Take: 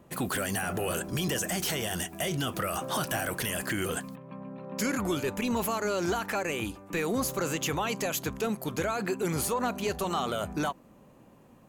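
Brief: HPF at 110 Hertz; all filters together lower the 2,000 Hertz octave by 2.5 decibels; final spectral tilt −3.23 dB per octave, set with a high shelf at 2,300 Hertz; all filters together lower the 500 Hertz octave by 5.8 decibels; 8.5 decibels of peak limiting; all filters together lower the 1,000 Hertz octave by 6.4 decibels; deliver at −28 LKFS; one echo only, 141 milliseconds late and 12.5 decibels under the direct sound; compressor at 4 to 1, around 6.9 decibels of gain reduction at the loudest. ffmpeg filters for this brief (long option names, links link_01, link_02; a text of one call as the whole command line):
ffmpeg -i in.wav -af "highpass=110,equalizer=frequency=500:width_type=o:gain=-6,equalizer=frequency=1000:width_type=o:gain=-7,equalizer=frequency=2000:width_type=o:gain=-3.5,highshelf=frequency=2300:gain=5.5,acompressor=threshold=-32dB:ratio=4,alimiter=level_in=2.5dB:limit=-24dB:level=0:latency=1,volume=-2.5dB,aecho=1:1:141:0.237,volume=8.5dB" out.wav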